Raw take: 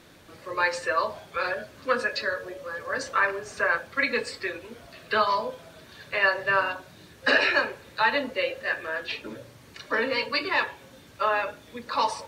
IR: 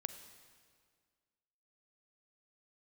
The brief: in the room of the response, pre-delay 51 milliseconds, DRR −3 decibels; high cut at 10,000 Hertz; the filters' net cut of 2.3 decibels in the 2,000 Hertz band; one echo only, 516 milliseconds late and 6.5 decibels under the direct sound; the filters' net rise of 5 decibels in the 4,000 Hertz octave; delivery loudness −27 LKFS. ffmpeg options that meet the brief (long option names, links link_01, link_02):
-filter_complex "[0:a]lowpass=10000,equalizer=frequency=2000:width_type=o:gain=-4.5,equalizer=frequency=4000:width_type=o:gain=7.5,aecho=1:1:516:0.473,asplit=2[link_01][link_02];[1:a]atrim=start_sample=2205,adelay=51[link_03];[link_02][link_03]afir=irnorm=-1:irlink=0,volume=5dB[link_04];[link_01][link_04]amix=inputs=2:normalize=0,volume=-5.5dB"